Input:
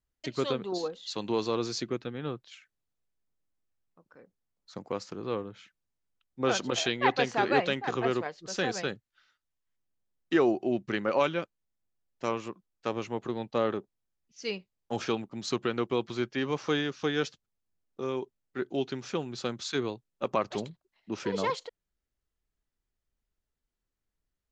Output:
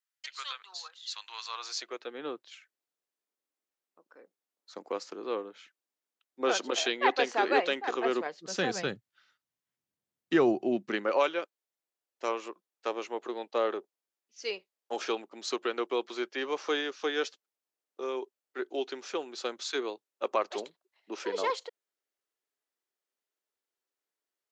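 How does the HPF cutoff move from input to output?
HPF 24 dB/oct
1.43 s 1200 Hz
2.22 s 300 Hz
8.01 s 300 Hz
8.92 s 100 Hz
10.42 s 100 Hz
11.2 s 350 Hz

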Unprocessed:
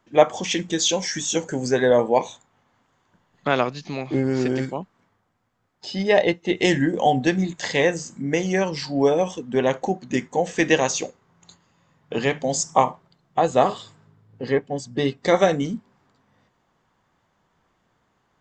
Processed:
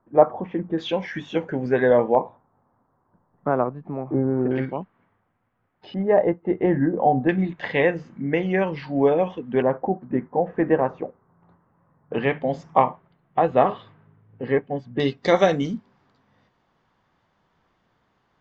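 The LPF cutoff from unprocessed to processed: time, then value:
LPF 24 dB/oct
1300 Hz
from 0.78 s 2600 Hz
from 2.15 s 1200 Hz
from 4.51 s 2700 Hz
from 5.94 s 1400 Hz
from 7.29 s 2700 Hz
from 9.62 s 1400 Hz
from 12.14 s 2600 Hz
from 15 s 5500 Hz

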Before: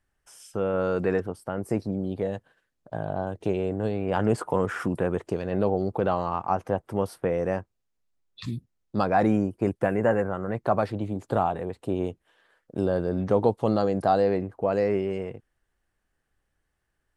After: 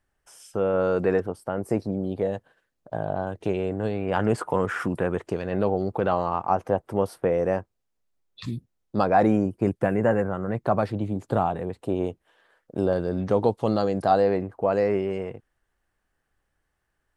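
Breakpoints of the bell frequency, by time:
bell +3.5 dB 1.9 oct
610 Hz
from 3.15 s 1800 Hz
from 6.12 s 560 Hz
from 9.46 s 150 Hz
from 11.81 s 710 Hz
from 12.93 s 4500 Hz
from 14.11 s 1000 Hz

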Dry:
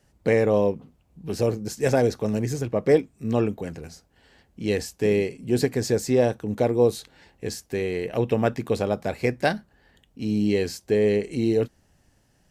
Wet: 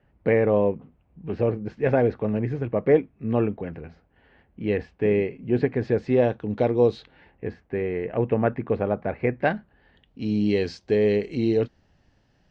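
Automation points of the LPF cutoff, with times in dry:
LPF 24 dB/oct
5.73 s 2600 Hz
6.84 s 4400 Hz
7.46 s 2200 Hz
9.2 s 2200 Hz
10.3 s 4800 Hz

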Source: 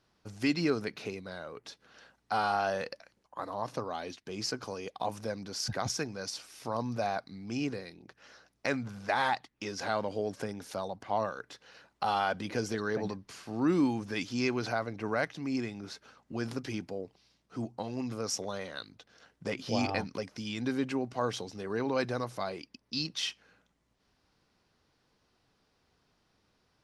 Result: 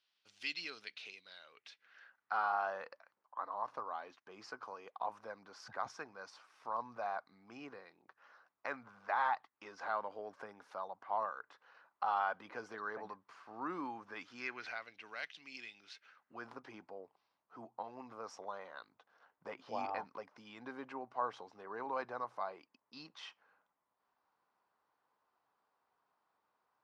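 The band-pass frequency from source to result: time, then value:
band-pass, Q 2.3
1.43 s 3200 Hz
2.48 s 1100 Hz
14.16 s 1100 Hz
14.96 s 3000 Hz
15.87 s 3000 Hz
16.48 s 990 Hz

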